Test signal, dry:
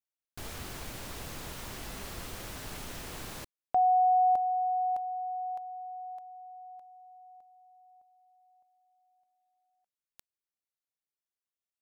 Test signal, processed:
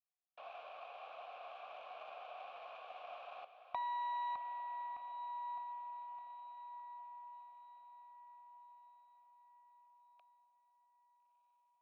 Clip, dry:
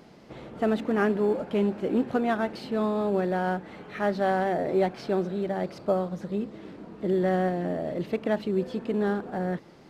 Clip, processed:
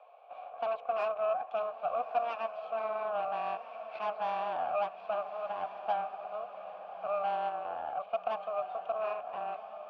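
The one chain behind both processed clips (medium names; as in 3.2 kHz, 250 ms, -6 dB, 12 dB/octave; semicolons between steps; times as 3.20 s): in parallel at +1 dB: compression, threshold -37 dBFS; on the sum: mistuned SSB +230 Hz 290–3600 Hz; Chebyshev shaper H 3 -23 dB, 4 -14 dB, 8 -21 dB, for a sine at -11 dBFS; vowel filter a; echo that smears into a reverb 1310 ms, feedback 42%, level -11 dB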